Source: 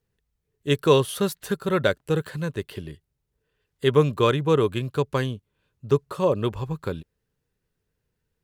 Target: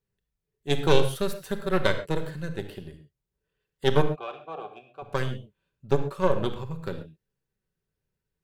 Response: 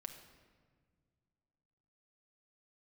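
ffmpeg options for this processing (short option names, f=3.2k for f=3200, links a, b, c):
-filter_complex "[0:a]aeval=exprs='0.531*(cos(1*acos(clip(val(0)/0.531,-1,1)))-cos(1*PI/2))+0.211*(cos(2*acos(clip(val(0)/0.531,-1,1)))-cos(2*PI/2))+0.0422*(cos(6*acos(clip(val(0)/0.531,-1,1)))-cos(6*PI/2))+0.0168*(cos(7*acos(clip(val(0)/0.531,-1,1)))-cos(7*PI/2))':c=same,asplit=3[a][b][c];[a]afade=t=out:st=4.01:d=0.02[d];[b]asplit=3[e][f][g];[e]bandpass=f=730:t=q:w=8,volume=0dB[h];[f]bandpass=f=1.09k:t=q:w=8,volume=-6dB[i];[g]bandpass=f=2.44k:t=q:w=8,volume=-9dB[j];[h][i][j]amix=inputs=3:normalize=0,afade=t=in:st=4.01:d=0.02,afade=t=out:st=5.02:d=0.02[k];[c]afade=t=in:st=5.02:d=0.02[l];[d][k][l]amix=inputs=3:normalize=0[m];[1:a]atrim=start_sample=2205,atrim=end_sample=6174[n];[m][n]afir=irnorm=-1:irlink=0"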